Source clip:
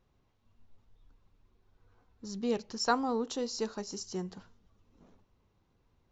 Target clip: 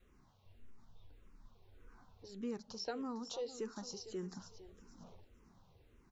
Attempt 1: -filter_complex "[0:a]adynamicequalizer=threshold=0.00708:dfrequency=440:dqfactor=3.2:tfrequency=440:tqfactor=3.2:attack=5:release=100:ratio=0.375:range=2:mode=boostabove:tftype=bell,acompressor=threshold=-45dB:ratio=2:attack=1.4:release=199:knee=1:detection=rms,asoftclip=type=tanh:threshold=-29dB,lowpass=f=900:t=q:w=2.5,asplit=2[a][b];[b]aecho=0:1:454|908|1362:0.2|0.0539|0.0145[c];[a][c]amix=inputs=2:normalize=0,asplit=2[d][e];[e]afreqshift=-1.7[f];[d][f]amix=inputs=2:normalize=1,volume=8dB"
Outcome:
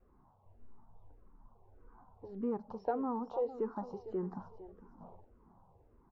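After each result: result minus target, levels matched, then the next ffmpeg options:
compressor: peak gain reduction -5 dB; 1000 Hz band +4.5 dB
-filter_complex "[0:a]adynamicequalizer=threshold=0.00708:dfrequency=440:dqfactor=3.2:tfrequency=440:tqfactor=3.2:attack=5:release=100:ratio=0.375:range=2:mode=boostabove:tftype=bell,acompressor=threshold=-54.5dB:ratio=2:attack=1.4:release=199:knee=1:detection=rms,asoftclip=type=tanh:threshold=-29dB,lowpass=f=900:t=q:w=2.5,asplit=2[a][b];[b]aecho=0:1:454|908|1362:0.2|0.0539|0.0145[c];[a][c]amix=inputs=2:normalize=0,asplit=2[d][e];[e]afreqshift=-1.7[f];[d][f]amix=inputs=2:normalize=1,volume=8dB"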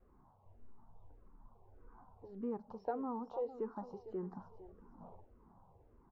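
1000 Hz band +4.5 dB
-filter_complex "[0:a]adynamicequalizer=threshold=0.00708:dfrequency=440:dqfactor=3.2:tfrequency=440:tqfactor=3.2:attack=5:release=100:ratio=0.375:range=2:mode=boostabove:tftype=bell,acompressor=threshold=-54.5dB:ratio=2:attack=1.4:release=199:knee=1:detection=rms,asoftclip=type=tanh:threshold=-29dB,asplit=2[a][b];[b]aecho=0:1:454|908|1362:0.2|0.0539|0.0145[c];[a][c]amix=inputs=2:normalize=0,asplit=2[d][e];[e]afreqshift=-1.7[f];[d][f]amix=inputs=2:normalize=1,volume=8dB"

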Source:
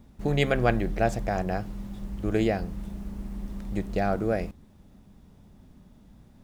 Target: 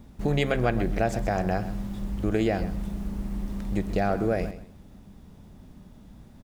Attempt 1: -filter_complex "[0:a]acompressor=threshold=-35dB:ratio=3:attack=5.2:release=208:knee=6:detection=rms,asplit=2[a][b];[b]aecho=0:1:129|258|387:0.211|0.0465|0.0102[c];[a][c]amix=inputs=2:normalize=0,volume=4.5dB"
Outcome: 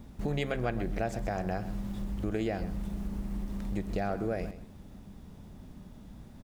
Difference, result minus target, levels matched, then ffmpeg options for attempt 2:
compressor: peak gain reduction +7.5 dB
-filter_complex "[0:a]acompressor=threshold=-24dB:ratio=3:attack=5.2:release=208:knee=6:detection=rms,asplit=2[a][b];[b]aecho=0:1:129|258|387:0.211|0.0465|0.0102[c];[a][c]amix=inputs=2:normalize=0,volume=4.5dB"

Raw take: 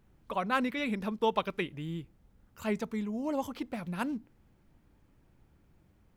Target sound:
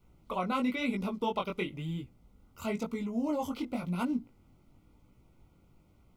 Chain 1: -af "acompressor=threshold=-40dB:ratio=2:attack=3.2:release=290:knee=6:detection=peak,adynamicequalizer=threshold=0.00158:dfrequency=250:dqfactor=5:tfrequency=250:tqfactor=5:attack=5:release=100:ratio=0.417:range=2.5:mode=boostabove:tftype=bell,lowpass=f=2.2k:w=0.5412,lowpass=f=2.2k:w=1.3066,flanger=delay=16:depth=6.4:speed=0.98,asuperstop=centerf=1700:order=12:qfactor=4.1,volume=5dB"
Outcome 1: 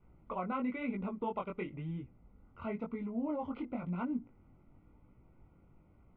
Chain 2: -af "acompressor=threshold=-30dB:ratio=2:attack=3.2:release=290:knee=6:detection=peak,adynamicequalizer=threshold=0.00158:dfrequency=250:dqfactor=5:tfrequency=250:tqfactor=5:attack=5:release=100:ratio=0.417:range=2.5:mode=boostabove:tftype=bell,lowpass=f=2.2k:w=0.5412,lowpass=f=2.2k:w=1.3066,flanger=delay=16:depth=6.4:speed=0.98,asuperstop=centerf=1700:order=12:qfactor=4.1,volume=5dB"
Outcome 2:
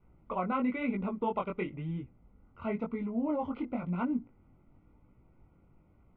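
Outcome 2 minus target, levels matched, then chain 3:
2000 Hz band -2.5 dB
-af "acompressor=threshold=-30dB:ratio=2:attack=3.2:release=290:knee=6:detection=peak,adynamicequalizer=threshold=0.00158:dfrequency=250:dqfactor=5:tfrequency=250:tqfactor=5:attack=5:release=100:ratio=0.417:range=2.5:mode=boostabove:tftype=bell,flanger=delay=16:depth=6.4:speed=0.98,asuperstop=centerf=1700:order=12:qfactor=4.1,volume=5dB"

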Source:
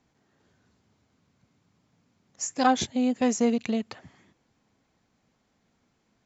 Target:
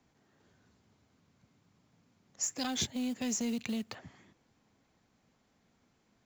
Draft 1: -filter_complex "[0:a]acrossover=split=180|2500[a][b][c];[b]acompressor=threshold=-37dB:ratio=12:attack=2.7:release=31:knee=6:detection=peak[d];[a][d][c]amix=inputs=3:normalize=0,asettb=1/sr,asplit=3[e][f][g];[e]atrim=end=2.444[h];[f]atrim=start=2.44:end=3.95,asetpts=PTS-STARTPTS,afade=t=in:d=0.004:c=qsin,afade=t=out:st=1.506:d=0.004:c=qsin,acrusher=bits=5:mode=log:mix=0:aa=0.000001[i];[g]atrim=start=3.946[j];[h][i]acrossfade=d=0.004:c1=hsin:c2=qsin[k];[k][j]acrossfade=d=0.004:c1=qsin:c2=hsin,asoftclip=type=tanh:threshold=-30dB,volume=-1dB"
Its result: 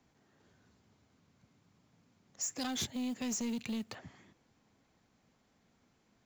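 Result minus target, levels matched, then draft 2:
soft clip: distortion +13 dB
-filter_complex "[0:a]acrossover=split=180|2500[a][b][c];[b]acompressor=threshold=-37dB:ratio=12:attack=2.7:release=31:knee=6:detection=peak[d];[a][d][c]amix=inputs=3:normalize=0,asettb=1/sr,asplit=3[e][f][g];[e]atrim=end=2.444[h];[f]atrim=start=2.44:end=3.95,asetpts=PTS-STARTPTS,afade=t=in:d=0.004:c=qsin,afade=t=out:st=1.506:d=0.004:c=qsin,acrusher=bits=5:mode=log:mix=0:aa=0.000001[i];[g]atrim=start=3.946[j];[h][i]acrossfade=d=0.004:c1=hsin:c2=qsin[k];[k][j]acrossfade=d=0.004:c1=qsin:c2=hsin,asoftclip=type=tanh:threshold=-20dB,volume=-1dB"

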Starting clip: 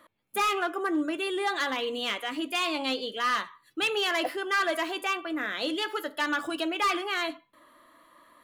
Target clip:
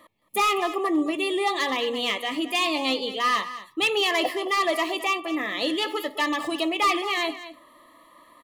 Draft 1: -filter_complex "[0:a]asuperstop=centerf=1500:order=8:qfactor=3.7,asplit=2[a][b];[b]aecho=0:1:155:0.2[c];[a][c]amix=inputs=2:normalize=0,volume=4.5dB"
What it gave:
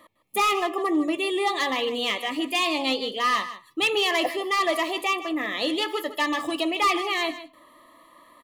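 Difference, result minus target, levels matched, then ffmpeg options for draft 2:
echo 62 ms early
-filter_complex "[0:a]asuperstop=centerf=1500:order=8:qfactor=3.7,asplit=2[a][b];[b]aecho=0:1:217:0.2[c];[a][c]amix=inputs=2:normalize=0,volume=4.5dB"

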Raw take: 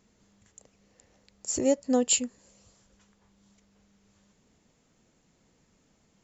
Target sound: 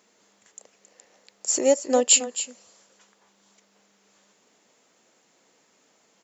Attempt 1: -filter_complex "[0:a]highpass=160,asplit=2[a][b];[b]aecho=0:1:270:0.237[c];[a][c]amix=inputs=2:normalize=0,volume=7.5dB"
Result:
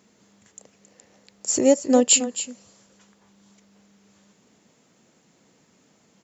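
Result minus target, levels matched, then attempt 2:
125 Hz band +11.0 dB
-filter_complex "[0:a]highpass=430,asplit=2[a][b];[b]aecho=0:1:270:0.237[c];[a][c]amix=inputs=2:normalize=0,volume=7.5dB"

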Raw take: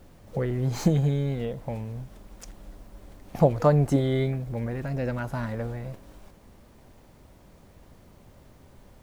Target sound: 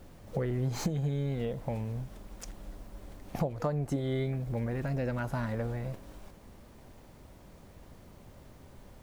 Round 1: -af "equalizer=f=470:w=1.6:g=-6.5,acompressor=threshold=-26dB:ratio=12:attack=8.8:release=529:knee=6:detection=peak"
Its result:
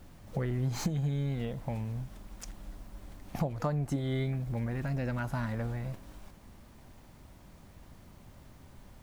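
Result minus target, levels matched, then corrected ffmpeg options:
500 Hz band -3.5 dB
-af "acompressor=threshold=-26dB:ratio=12:attack=8.8:release=529:knee=6:detection=peak"

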